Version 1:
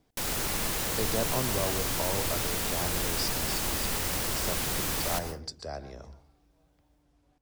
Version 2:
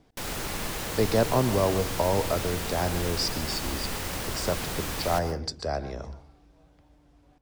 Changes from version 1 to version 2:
speech +8.5 dB; master: add high shelf 5300 Hz -6.5 dB

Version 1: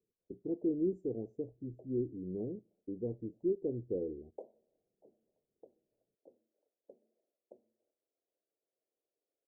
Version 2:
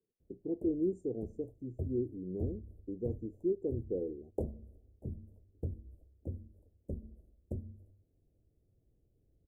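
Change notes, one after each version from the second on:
background: remove ladder high-pass 450 Hz, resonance 20%; master: remove air absorption 160 m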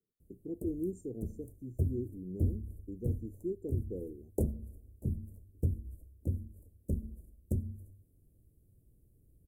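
background +7.5 dB; master: add EQ curve 200 Hz 0 dB, 740 Hz -10 dB, 11000 Hz +14 dB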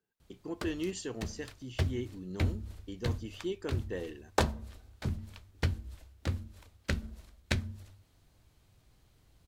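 master: remove inverse Chebyshev band-stop 1200–4400 Hz, stop band 60 dB

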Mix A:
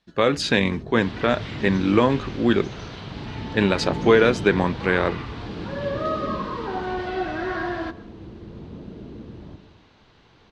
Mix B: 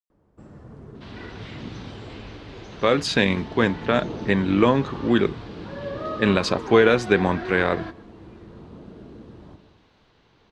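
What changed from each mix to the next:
speech: entry +2.65 s; first sound: add tilt shelf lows -5.5 dB, about 710 Hz; second sound -5.0 dB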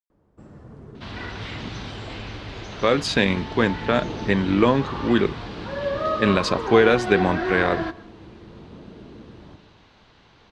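second sound +7.0 dB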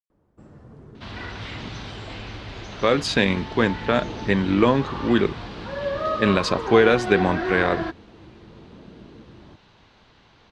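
reverb: off

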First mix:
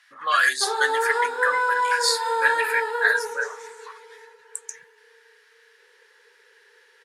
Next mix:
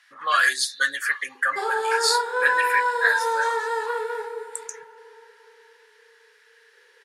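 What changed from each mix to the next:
background: entry +0.95 s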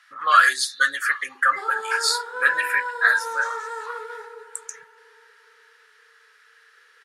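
background -9.0 dB; master: add bell 1300 Hz +11.5 dB 0.28 oct

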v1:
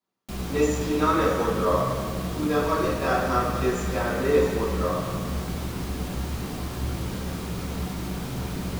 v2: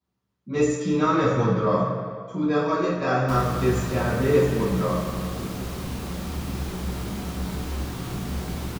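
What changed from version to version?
speech: remove HPF 300 Hz 12 dB/oct; background: entry +3.00 s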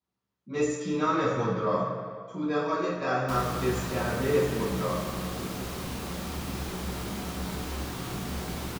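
speech -3.5 dB; master: add low shelf 250 Hz -7 dB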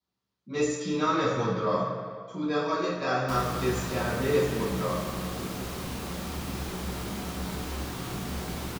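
speech: add bell 4400 Hz +6.5 dB 1 oct

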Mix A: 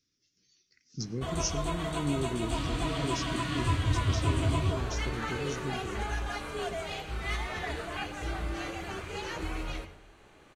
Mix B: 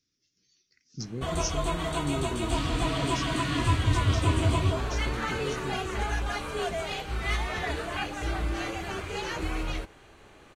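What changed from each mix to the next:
background +5.5 dB; reverb: off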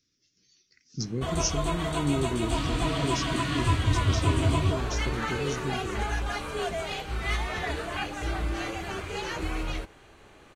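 speech +4.5 dB

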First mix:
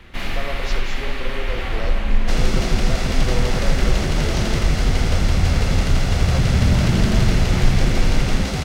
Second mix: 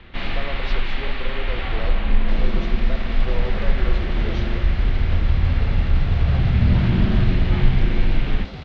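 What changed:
speech: send -6.0 dB; second sound -11.0 dB; master: add Chebyshev low-pass 3900 Hz, order 3

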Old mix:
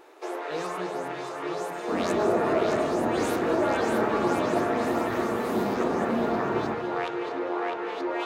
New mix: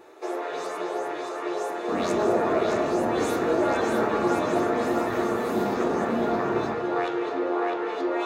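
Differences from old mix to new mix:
speech -12.0 dB; first sound: send +9.0 dB

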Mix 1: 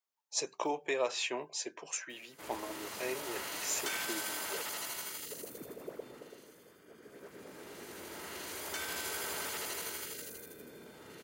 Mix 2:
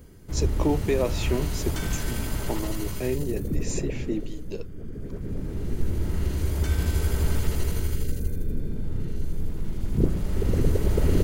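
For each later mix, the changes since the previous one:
background: entry -2.10 s; master: remove HPF 730 Hz 12 dB/oct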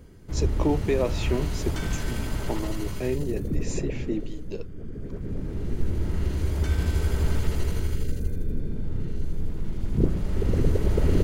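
master: add high shelf 8700 Hz -11 dB

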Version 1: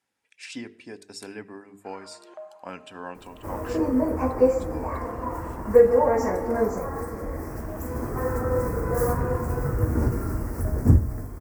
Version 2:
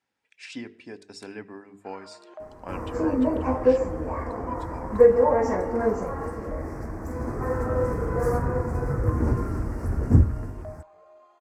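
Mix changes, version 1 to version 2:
second sound: entry -0.75 s; master: add air absorption 64 m

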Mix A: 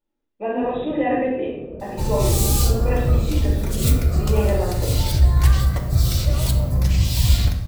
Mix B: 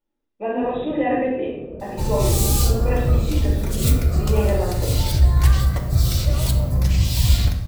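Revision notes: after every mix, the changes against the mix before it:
none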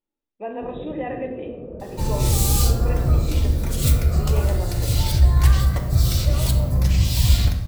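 speech: send -11.5 dB

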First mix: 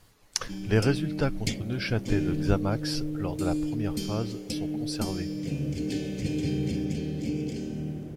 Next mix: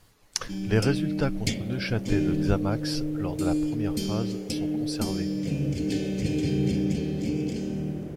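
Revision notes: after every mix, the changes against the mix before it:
second sound +3.0 dB; reverb: on, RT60 0.95 s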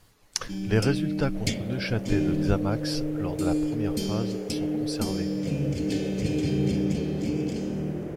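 second sound +6.0 dB

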